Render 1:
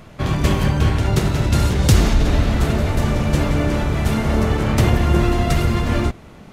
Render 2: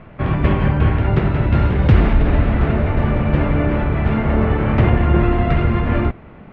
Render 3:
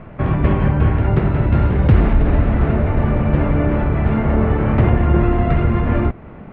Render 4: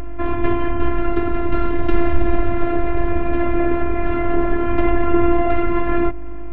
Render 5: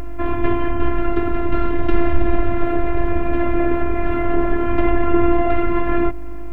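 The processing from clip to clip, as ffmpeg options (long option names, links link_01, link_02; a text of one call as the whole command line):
ffmpeg -i in.wav -af "lowpass=frequency=2500:width=0.5412,lowpass=frequency=2500:width=1.3066,volume=1.5dB" out.wav
ffmpeg -i in.wav -filter_complex "[0:a]asplit=2[link_01][link_02];[link_02]acompressor=threshold=-23dB:ratio=6,volume=-1dB[link_03];[link_01][link_03]amix=inputs=2:normalize=0,highshelf=frequency=2800:gain=-10.5,volume=-1.5dB" out.wav
ffmpeg -i in.wav -af "aeval=exprs='val(0)+0.0708*(sin(2*PI*50*n/s)+sin(2*PI*2*50*n/s)/2+sin(2*PI*3*50*n/s)/3+sin(2*PI*4*50*n/s)/4+sin(2*PI*5*50*n/s)/5)':channel_layout=same,afftfilt=real='hypot(re,im)*cos(PI*b)':imag='0':win_size=512:overlap=0.75,volume=3.5dB" out.wav
ffmpeg -i in.wav -af "acrusher=bits=9:mix=0:aa=0.000001" out.wav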